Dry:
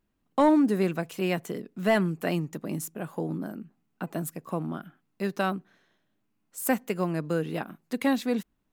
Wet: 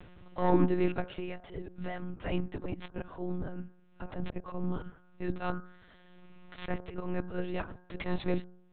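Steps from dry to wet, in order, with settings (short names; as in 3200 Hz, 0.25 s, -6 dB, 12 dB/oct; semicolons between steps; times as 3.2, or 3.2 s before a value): tracing distortion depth 0.068 ms; de-hum 101 Hz, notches 16; 1.05–2.23 compressor 10:1, threshold -35 dBFS, peak gain reduction 17 dB; 4.13–5.41 low shelf 250 Hz +7 dB; auto swell 0.119 s; upward compressor, threshold -28 dBFS; monotone LPC vocoder at 8 kHz 180 Hz; gain -2 dB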